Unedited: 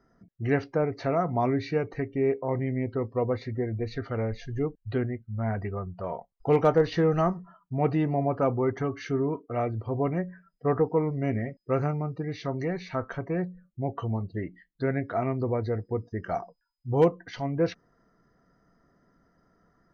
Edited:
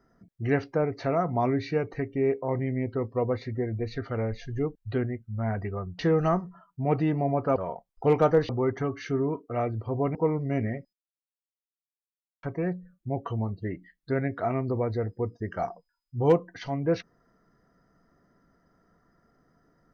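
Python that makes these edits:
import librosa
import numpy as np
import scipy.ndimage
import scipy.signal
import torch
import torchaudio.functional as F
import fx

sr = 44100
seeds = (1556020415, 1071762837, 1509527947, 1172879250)

y = fx.edit(x, sr, fx.move(start_s=5.99, length_s=0.93, to_s=8.49),
    fx.cut(start_s=10.15, length_s=0.72),
    fx.silence(start_s=11.65, length_s=1.5), tone=tone)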